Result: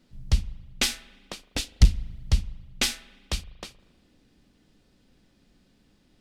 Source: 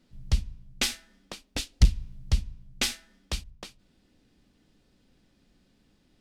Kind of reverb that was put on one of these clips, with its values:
spring reverb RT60 1.5 s, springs 39 ms, chirp 60 ms, DRR 19 dB
level +2.5 dB

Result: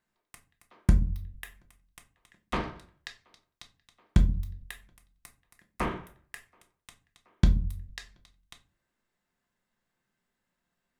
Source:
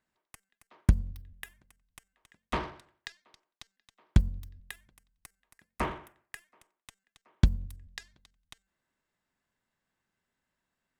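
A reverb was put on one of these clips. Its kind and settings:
rectangular room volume 170 cubic metres, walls furnished, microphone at 0.88 metres

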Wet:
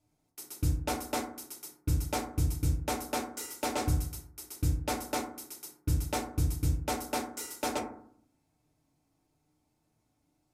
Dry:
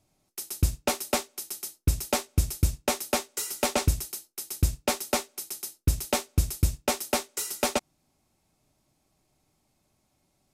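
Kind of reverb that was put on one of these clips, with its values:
feedback delay network reverb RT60 0.61 s, low-frequency decay 1.3×, high-frequency decay 0.3×, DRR −3 dB
level −10 dB

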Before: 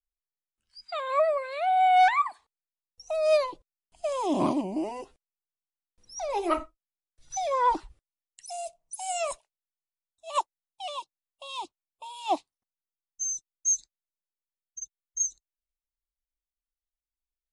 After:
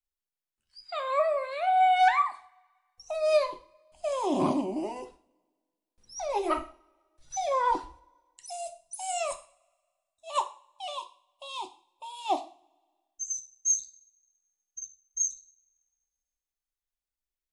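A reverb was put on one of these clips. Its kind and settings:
coupled-rooms reverb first 0.41 s, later 1.7 s, from −27 dB, DRR 6.5 dB
level −1.5 dB

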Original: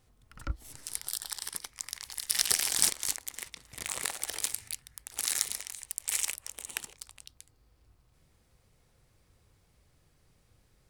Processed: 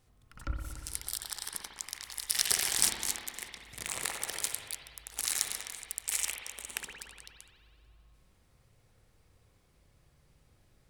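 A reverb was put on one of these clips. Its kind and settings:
spring reverb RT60 1.9 s, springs 57 ms, chirp 40 ms, DRR 2 dB
level −1.5 dB

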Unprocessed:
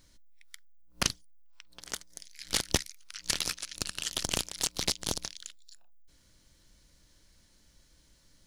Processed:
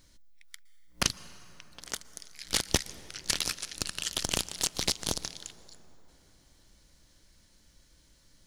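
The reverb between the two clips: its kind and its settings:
dense smooth reverb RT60 4 s, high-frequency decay 0.45×, pre-delay 105 ms, DRR 17 dB
level +1 dB

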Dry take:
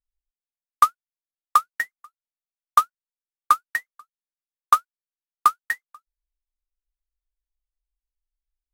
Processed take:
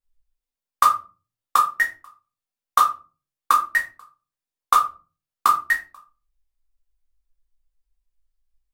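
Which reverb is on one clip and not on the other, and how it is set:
rectangular room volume 160 cubic metres, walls furnished, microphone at 2.2 metres

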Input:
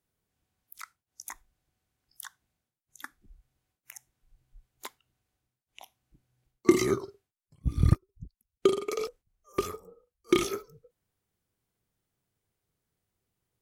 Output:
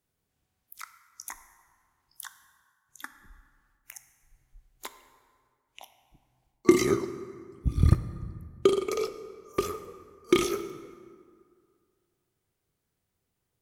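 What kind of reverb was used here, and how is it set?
dense smooth reverb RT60 2.1 s, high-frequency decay 0.55×, DRR 10 dB
level +1.5 dB

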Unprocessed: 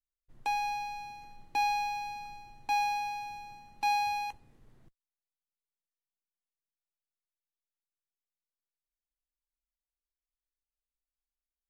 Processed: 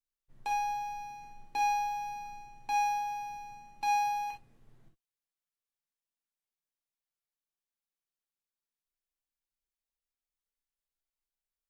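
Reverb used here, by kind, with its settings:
reverb whose tail is shaped and stops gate 80 ms flat, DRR 1.5 dB
level −4 dB

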